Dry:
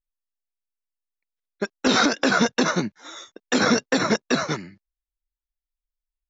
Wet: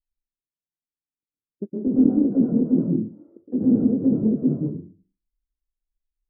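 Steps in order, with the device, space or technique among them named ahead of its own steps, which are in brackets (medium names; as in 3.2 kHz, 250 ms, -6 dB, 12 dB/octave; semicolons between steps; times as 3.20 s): next room (low-pass 350 Hz 24 dB/octave; reverberation RT60 0.40 s, pre-delay 112 ms, DRR -5.5 dB)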